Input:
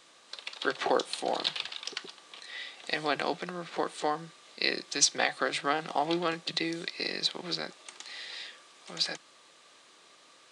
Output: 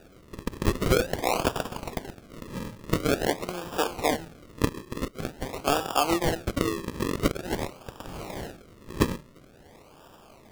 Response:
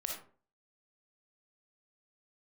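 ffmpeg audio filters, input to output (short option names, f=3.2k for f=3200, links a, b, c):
-filter_complex "[0:a]equalizer=f=120:t=o:w=0.84:g=-13,bandreject=f=86.91:t=h:w=4,bandreject=f=173.82:t=h:w=4,bandreject=f=260.73:t=h:w=4,bandreject=f=347.64:t=h:w=4,bandreject=f=434.55:t=h:w=4,bandreject=f=521.46:t=h:w=4,bandreject=f=608.37:t=h:w=4,bandreject=f=695.28:t=h:w=4,bandreject=f=782.19:t=h:w=4,bandreject=f=869.1:t=h:w=4,bandreject=f=956.01:t=h:w=4,bandreject=f=1.04292k:t=h:w=4,bandreject=f=1.12983k:t=h:w=4,bandreject=f=1.21674k:t=h:w=4,bandreject=f=1.30365k:t=h:w=4,bandreject=f=1.39056k:t=h:w=4,bandreject=f=1.47747k:t=h:w=4,bandreject=f=1.56438k:t=h:w=4,bandreject=f=1.65129k:t=h:w=4,bandreject=f=1.7382k:t=h:w=4,bandreject=f=1.82511k:t=h:w=4,bandreject=f=1.91202k:t=h:w=4,bandreject=f=1.99893k:t=h:w=4,bandreject=f=2.08584k:t=h:w=4,bandreject=f=2.17275k:t=h:w=4,bandreject=f=2.25966k:t=h:w=4,bandreject=f=2.34657k:t=h:w=4,bandreject=f=2.43348k:t=h:w=4,bandreject=f=2.52039k:t=h:w=4,bandreject=f=2.6073k:t=h:w=4,bandreject=f=2.69421k:t=h:w=4,bandreject=f=2.78112k:t=h:w=4,asettb=1/sr,asplit=3[a][b][c];[a]atrim=end=4.654[d];[b]atrim=start=4.65:end=5.67,asetpts=PTS-STARTPTS,afade=t=in:d=0.004:c=qsin,afade=t=out:st=1.016:d=0.004:c=qsin,acrossover=split=160[e][f];[f]acompressor=threshold=-39dB:ratio=3[g];[e][g]amix=inputs=2:normalize=0[h];[c]atrim=start=5.666[i];[d][h]acrossfade=d=0.004:c1=hsin:c2=qsin[j];[j][i]acrossfade=d=0.004:c1=qsin:c2=hsin,acrusher=samples=41:mix=1:aa=0.000001:lfo=1:lforange=41:lforate=0.47,volume=6dB"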